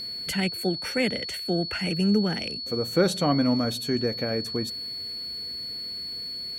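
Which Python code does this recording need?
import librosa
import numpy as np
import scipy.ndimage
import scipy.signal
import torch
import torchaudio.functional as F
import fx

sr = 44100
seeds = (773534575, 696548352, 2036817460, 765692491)

y = fx.notch(x, sr, hz=4400.0, q=30.0)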